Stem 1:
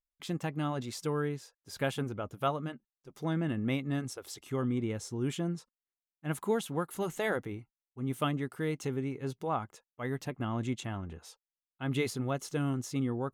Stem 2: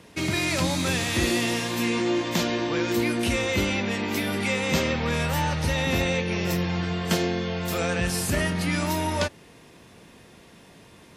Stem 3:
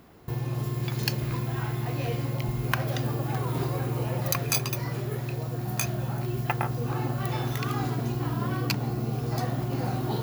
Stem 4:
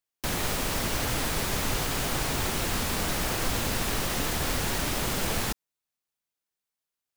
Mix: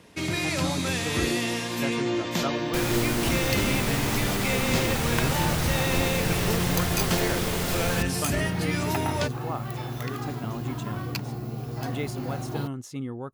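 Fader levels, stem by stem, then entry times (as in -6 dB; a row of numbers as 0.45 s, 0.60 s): -1.5 dB, -2.5 dB, -4.0 dB, -1.0 dB; 0.00 s, 0.00 s, 2.45 s, 2.50 s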